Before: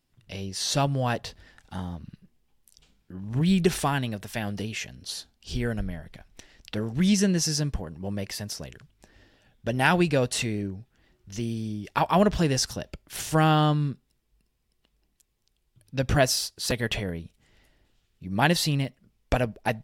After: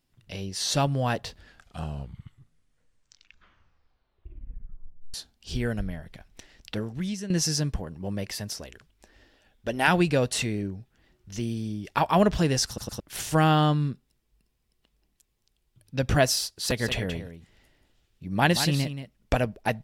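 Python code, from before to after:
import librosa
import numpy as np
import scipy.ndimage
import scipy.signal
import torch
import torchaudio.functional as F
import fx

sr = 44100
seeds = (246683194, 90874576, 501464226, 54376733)

y = fx.peak_eq(x, sr, hz=140.0, db=-13.0, octaves=0.77, at=(8.6, 9.88))
y = fx.echo_single(y, sr, ms=179, db=-10.0, at=(16.69, 19.41), fade=0.02)
y = fx.edit(y, sr, fx.tape_stop(start_s=1.27, length_s=3.87),
    fx.fade_out_to(start_s=6.74, length_s=0.56, curve='qua', floor_db=-13.5),
    fx.stutter_over(start_s=12.67, slice_s=0.11, count=3), tone=tone)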